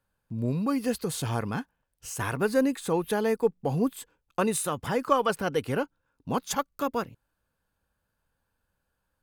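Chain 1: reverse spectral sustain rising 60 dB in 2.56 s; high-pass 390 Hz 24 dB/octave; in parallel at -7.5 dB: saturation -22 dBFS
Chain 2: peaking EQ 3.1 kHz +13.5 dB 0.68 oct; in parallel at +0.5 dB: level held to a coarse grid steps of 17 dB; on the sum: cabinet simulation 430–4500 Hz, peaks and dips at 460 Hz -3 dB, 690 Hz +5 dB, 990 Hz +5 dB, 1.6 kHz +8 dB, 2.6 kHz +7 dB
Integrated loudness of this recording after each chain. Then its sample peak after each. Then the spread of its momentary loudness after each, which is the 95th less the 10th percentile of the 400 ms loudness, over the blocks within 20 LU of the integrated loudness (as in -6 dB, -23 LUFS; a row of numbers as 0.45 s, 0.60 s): -22.0 LUFS, -24.0 LUFS; -5.0 dBFS, -4.0 dBFS; 9 LU, 12 LU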